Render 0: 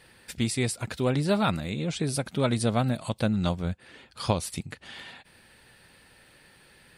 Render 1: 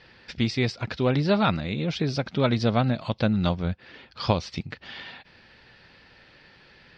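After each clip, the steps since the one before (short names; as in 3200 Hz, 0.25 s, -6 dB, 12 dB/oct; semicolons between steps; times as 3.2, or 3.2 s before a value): elliptic low-pass 5400 Hz, stop band 60 dB; gain +3.5 dB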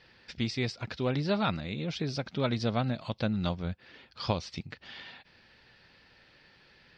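high shelf 5300 Hz +6 dB; gain -7 dB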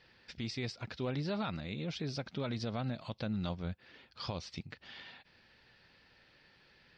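limiter -23 dBFS, peak gain reduction 8.5 dB; gain -4.5 dB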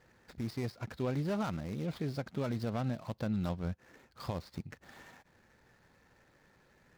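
median filter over 15 samples; gain +2.5 dB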